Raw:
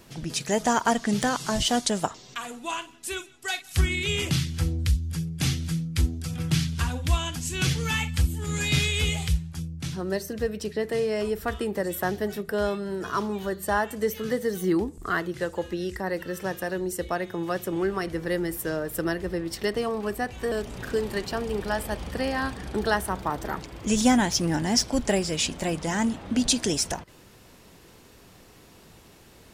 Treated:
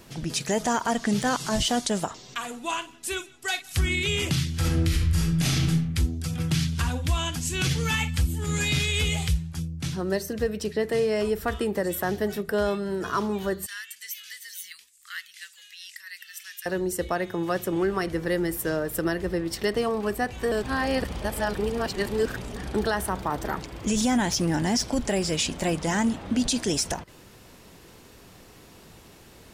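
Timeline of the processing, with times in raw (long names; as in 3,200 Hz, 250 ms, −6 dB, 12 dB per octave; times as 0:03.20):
0:04.56–0:05.65: thrown reverb, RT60 0.84 s, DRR −6 dB
0:13.66–0:16.66: inverse Chebyshev high-pass filter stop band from 820 Hz, stop band 50 dB
0:20.63–0:22.56: reverse
whole clip: brickwall limiter −17 dBFS; level +2 dB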